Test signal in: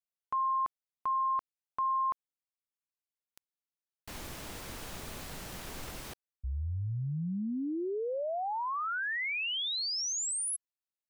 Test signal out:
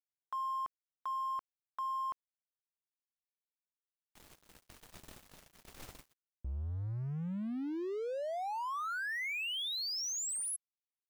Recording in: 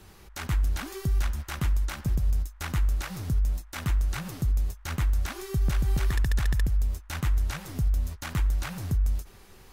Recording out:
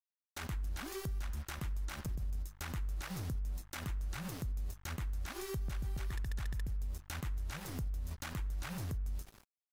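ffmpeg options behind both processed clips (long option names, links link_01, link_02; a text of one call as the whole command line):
ffmpeg -i in.wav -af "agate=range=-33dB:threshold=-36dB:ratio=3:release=312:detection=rms,aeval=exprs='sgn(val(0))*max(abs(val(0))-0.00335,0)':channel_layout=same,acompressor=threshold=-35dB:ratio=12:attack=0.86:release=169:knee=6:detection=peak,volume=1dB" out.wav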